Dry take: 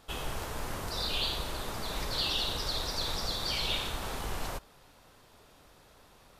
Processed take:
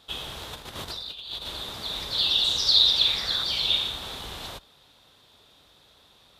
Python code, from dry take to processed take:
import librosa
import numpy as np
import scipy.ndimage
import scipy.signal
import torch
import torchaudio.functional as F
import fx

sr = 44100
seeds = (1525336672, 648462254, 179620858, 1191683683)

y = fx.over_compress(x, sr, threshold_db=-38.0, ratio=-0.5, at=(0.53, 1.48))
y = fx.peak_eq(y, sr, hz=fx.line((2.43, 8200.0), (3.42, 1400.0)), db=14.0, octaves=0.63, at=(2.43, 3.42), fade=0.02)
y = scipy.signal.sosfilt(scipy.signal.butter(2, 49.0, 'highpass', fs=sr, output='sos'), y)
y = fx.peak_eq(y, sr, hz=3600.0, db=15.0, octaves=0.55)
y = y * 10.0 ** (-2.5 / 20.0)